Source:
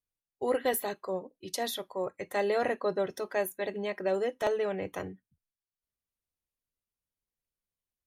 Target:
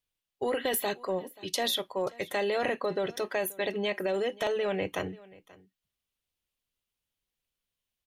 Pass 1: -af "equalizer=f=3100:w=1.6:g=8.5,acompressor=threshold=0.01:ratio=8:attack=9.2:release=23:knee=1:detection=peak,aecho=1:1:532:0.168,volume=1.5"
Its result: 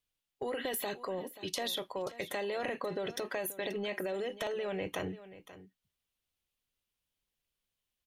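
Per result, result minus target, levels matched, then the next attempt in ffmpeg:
compression: peak gain reduction +7 dB; echo-to-direct +6.5 dB
-af "equalizer=f=3100:w=1.6:g=8.5,acompressor=threshold=0.0251:ratio=8:attack=9.2:release=23:knee=1:detection=peak,aecho=1:1:532:0.168,volume=1.5"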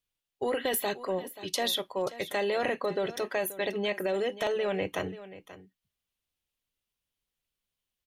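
echo-to-direct +6.5 dB
-af "equalizer=f=3100:w=1.6:g=8.5,acompressor=threshold=0.0251:ratio=8:attack=9.2:release=23:knee=1:detection=peak,aecho=1:1:532:0.0794,volume=1.5"

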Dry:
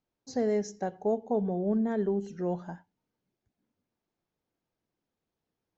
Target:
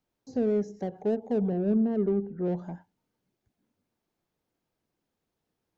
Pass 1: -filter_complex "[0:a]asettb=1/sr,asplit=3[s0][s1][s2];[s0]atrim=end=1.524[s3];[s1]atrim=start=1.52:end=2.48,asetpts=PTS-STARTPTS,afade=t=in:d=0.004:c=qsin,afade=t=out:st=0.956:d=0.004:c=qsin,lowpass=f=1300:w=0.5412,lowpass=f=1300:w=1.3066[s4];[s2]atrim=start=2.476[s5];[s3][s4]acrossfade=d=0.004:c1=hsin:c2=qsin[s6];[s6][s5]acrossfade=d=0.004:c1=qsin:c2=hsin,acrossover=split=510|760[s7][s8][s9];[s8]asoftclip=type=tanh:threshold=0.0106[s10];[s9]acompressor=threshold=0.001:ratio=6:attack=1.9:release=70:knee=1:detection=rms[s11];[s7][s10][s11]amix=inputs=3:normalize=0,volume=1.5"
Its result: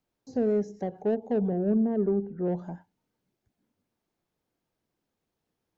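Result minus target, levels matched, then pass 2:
saturation: distortion -5 dB
-filter_complex "[0:a]asettb=1/sr,asplit=3[s0][s1][s2];[s0]atrim=end=1.524[s3];[s1]atrim=start=1.52:end=2.48,asetpts=PTS-STARTPTS,afade=t=in:d=0.004:c=qsin,afade=t=out:st=0.956:d=0.004:c=qsin,lowpass=f=1300:w=0.5412,lowpass=f=1300:w=1.3066[s4];[s2]atrim=start=2.476[s5];[s3][s4]acrossfade=d=0.004:c1=hsin:c2=qsin[s6];[s6][s5]acrossfade=d=0.004:c1=qsin:c2=hsin,acrossover=split=510|760[s7][s8][s9];[s8]asoftclip=type=tanh:threshold=0.00473[s10];[s9]acompressor=threshold=0.001:ratio=6:attack=1.9:release=70:knee=1:detection=rms[s11];[s7][s10][s11]amix=inputs=3:normalize=0,volume=1.5"

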